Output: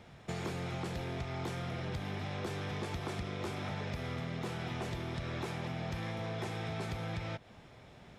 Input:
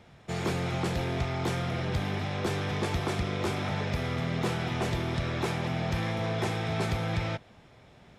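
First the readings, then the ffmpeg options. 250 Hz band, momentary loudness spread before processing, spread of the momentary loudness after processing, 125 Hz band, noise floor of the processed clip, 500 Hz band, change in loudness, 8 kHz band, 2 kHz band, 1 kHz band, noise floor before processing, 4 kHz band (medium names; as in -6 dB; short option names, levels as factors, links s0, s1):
-8.0 dB, 1 LU, 2 LU, -8.0 dB, -56 dBFS, -8.0 dB, -8.0 dB, -8.5 dB, -8.0 dB, -8.0 dB, -56 dBFS, -8.0 dB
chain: -af "acompressor=threshold=0.0158:ratio=5"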